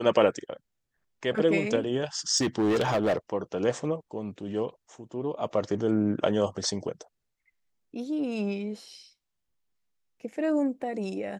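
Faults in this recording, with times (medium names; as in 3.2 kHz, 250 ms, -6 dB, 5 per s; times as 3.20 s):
2.37–3.17 s: clipped -21 dBFS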